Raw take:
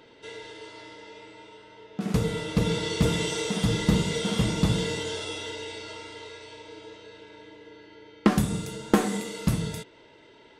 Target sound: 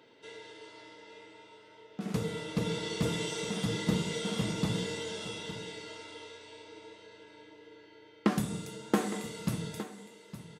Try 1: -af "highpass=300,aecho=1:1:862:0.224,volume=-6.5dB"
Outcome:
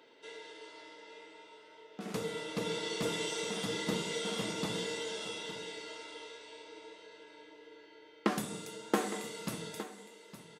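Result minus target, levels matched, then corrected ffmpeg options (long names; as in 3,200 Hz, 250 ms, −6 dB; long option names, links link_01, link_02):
125 Hz band −7.0 dB
-af "highpass=120,aecho=1:1:862:0.224,volume=-6.5dB"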